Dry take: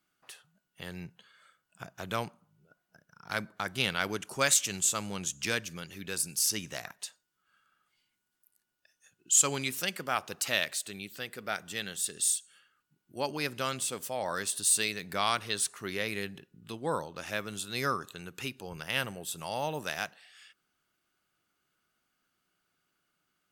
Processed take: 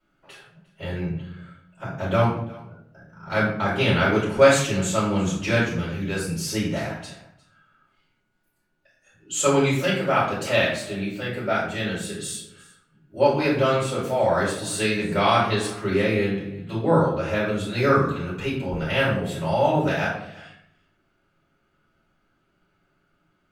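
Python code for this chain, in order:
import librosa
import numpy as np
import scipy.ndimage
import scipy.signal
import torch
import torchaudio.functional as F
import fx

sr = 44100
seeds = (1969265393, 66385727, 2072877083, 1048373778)

p1 = fx.lowpass(x, sr, hz=1000.0, slope=6)
p2 = p1 + fx.echo_single(p1, sr, ms=353, db=-21.5, dry=0)
y = fx.room_shoebox(p2, sr, seeds[0], volume_m3=100.0, walls='mixed', distance_m=4.7)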